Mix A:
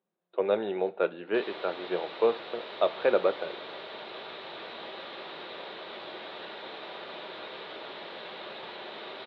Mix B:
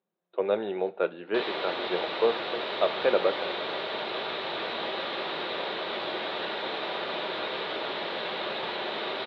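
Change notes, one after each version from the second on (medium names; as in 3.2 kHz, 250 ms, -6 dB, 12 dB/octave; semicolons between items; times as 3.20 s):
background +9.0 dB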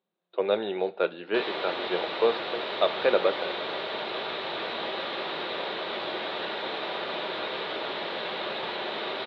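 speech: remove distance through air 320 m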